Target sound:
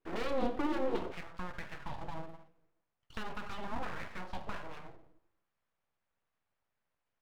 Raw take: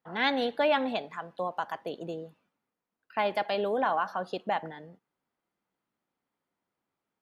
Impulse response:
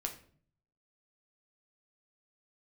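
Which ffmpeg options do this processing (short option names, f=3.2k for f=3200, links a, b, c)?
-filter_complex "[1:a]atrim=start_sample=2205[a];[0:a][a]afir=irnorm=-1:irlink=0,acrossover=split=300[b][c];[c]acompressor=threshold=-39dB:ratio=6[d];[b][d]amix=inputs=2:normalize=0,highshelf=f=3.6k:g=-11.5,aeval=exprs='abs(val(0))':c=same,asetnsamples=n=441:p=0,asendcmd='1.12 equalizer g -4.5',equalizer=f=340:t=o:w=1.1:g=11,volume=2dB"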